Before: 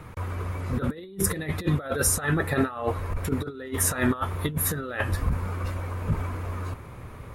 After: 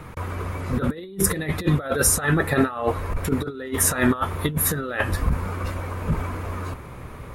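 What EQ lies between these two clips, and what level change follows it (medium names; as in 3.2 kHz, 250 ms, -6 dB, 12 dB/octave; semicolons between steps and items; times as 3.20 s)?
peaking EQ 100 Hz -10 dB 0.24 oct; +4.5 dB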